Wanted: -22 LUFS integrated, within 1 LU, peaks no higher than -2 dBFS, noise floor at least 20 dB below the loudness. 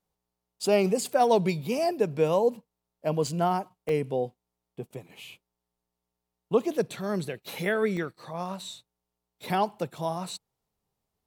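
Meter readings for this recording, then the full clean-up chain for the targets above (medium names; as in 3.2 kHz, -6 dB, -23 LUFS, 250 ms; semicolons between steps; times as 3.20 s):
dropouts 3; longest dropout 2.2 ms; loudness -28.0 LUFS; peak level -10.0 dBFS; loudness target -22.0 LUFS
-> interpolate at 3.27/3.89/7.97 s, 2.2 ms; trim +6 dB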